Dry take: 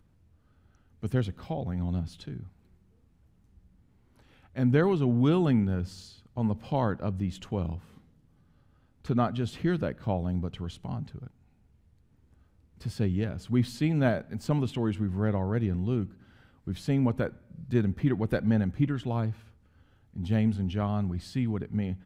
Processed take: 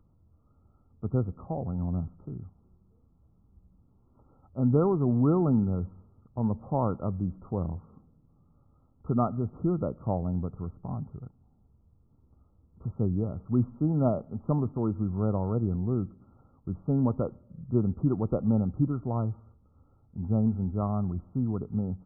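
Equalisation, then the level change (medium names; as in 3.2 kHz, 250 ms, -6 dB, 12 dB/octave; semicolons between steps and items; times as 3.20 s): brick-wall FIR low-pass 1.4 kHz; 0.0 dB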